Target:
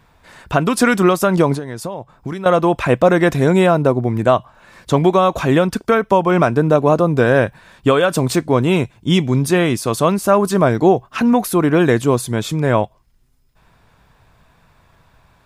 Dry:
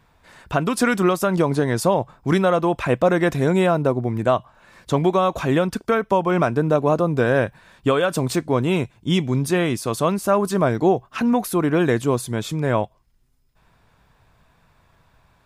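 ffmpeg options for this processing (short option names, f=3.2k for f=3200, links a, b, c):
-filter_complex "[0:a]asettb=1/sr,asplit=3[a][b][c];[a]atrim=end=1.544[d];[b]atrim=start=1.54:end=2.46,asetpts=PTS-STARTPTS,afade=t=in:d=0.004:c=qsin,afade=t=out:st=0.916:d=0.004:c=qsin,acompressor=threshold=-29dB:ratio=6[e];[c]atrim=start=2.456[f];[d][e]acrossfade=d=0.004:c1=hsin:c2=qsin[g];[g][f]acrossfade=d=0.004:c1=qsin:c2=hsin,volume=5dB"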